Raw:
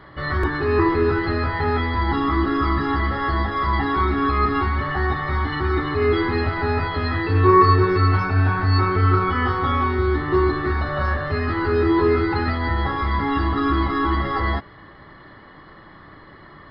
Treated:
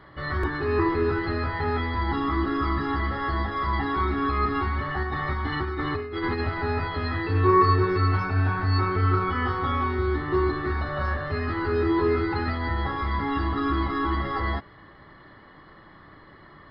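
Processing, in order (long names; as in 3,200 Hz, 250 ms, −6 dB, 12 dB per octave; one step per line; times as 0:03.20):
0:05.03–0:06.41: compressor whose output falls as the input rises −22 dBFS, ratio −0.5
level −5 dB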